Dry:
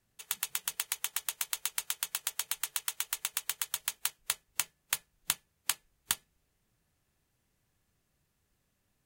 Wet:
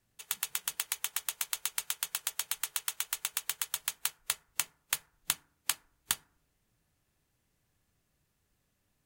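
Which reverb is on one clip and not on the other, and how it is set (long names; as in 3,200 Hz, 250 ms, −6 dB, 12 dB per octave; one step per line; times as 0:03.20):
feedback delay network reverb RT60 0.58 s, low-frequency decay 1.35×, high-frequency decay 0.35×, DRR 18 dB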